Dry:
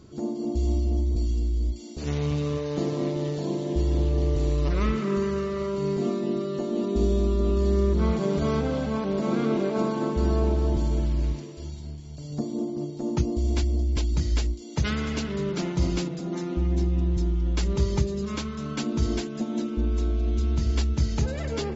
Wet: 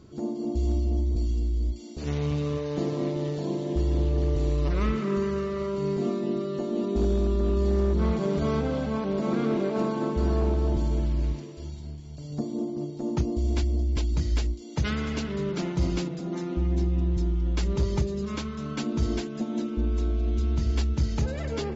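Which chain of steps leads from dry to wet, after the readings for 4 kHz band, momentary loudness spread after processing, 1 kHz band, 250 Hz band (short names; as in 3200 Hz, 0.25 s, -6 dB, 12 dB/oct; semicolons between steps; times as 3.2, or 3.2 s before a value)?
-2.5 dB, 7 LU, -1.0 dB, -1.0 dB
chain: hard clip -16 dBFS, distortion -27 dB; high shelf 6100 Hz -5.5 dB; gain -1 dB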